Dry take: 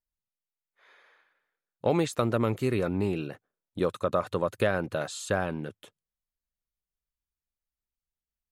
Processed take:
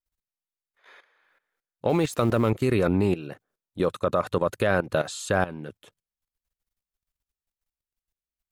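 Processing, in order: 1.89–2.50 s: companding laws mixed up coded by mu; level held to a coarse grid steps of 15 dB; trim +8.5 dB

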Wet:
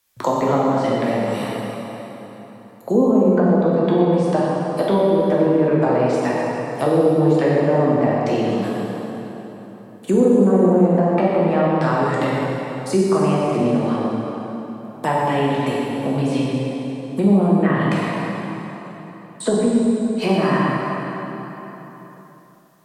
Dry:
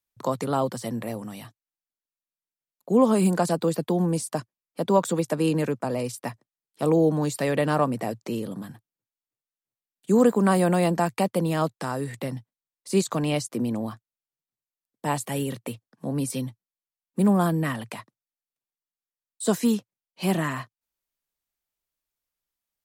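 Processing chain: bass shelf 290 Hz -9.5 dB; low-pass that closes with the level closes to 490 Hz, closed at -22 dBFS; plate-style reverb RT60 2.7 s, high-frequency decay 0.75×, DRR -6 dB; three bands compressed up and down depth 40%; trim +6 dB

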